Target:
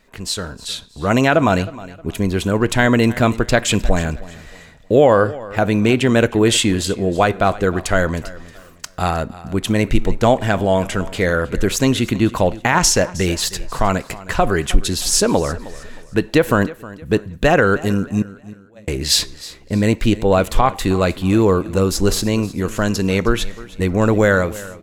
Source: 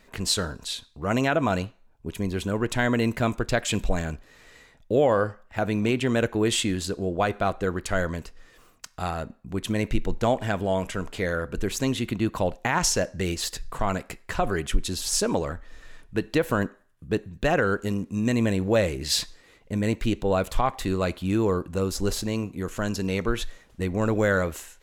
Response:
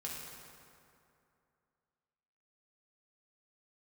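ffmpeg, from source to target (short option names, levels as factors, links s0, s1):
-filter_complex "[0:a]asettb=1/sr,asplit=3[s0][s1][s2];[s0]atrim=end=18.224[s3];[s1]atrim=start=18.22:end=18.88,asetpts=PTS-STARTPTS,afade=t=in:d=0.004:c=qsin,afade=t=out:st=0.656:d=0.004:c=qsin,agate=range=0.0112:threshold=0.2:ratio=16:detection=peak[s4];[s2]atrim=start=18.876[s5];[s3][s4]acrossfade=d=0.004:c1=hsin:c2=qsin[s6];[s6][s5]acrossfade=d=0.004:c1=qsin:c2=hsin,dynaudnorm=f=200:g=7:m=3.76,aecho=1:1:313|626|939:0.119|0.0392|0.0129"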